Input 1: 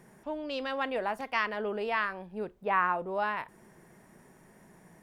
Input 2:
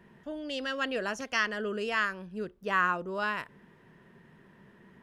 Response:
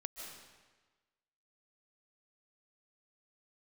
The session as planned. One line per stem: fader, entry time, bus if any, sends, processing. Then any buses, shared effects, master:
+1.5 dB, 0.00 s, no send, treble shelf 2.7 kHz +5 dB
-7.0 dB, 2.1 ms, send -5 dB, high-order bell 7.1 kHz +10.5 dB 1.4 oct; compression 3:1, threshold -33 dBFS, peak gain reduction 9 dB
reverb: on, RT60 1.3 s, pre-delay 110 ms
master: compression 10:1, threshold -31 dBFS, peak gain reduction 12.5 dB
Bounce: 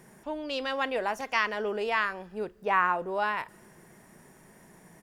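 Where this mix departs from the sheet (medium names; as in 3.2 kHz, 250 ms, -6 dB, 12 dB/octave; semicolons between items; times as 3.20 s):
stem 2 -7.0 dB -> -15.0 dB; master: missing compression 10:1, threshold -31 dBFS, peak gain reduction 12.5 dB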